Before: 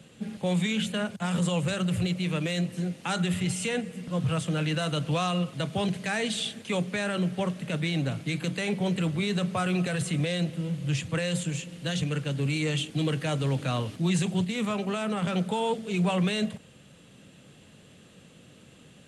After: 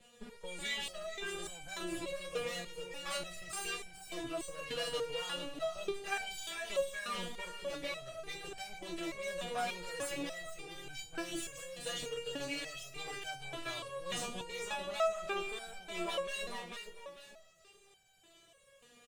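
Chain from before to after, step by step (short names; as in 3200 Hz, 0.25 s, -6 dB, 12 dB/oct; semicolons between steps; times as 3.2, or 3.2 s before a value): minimum comb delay 1.7 ms; low shelf 280 Hz -7.5 dB; on a send: feedback echo 0.445 s, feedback 31%, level -6 dB; on the sum: stepped resonator 3.4 Hz 240–770 Hz; gain +8.5 dB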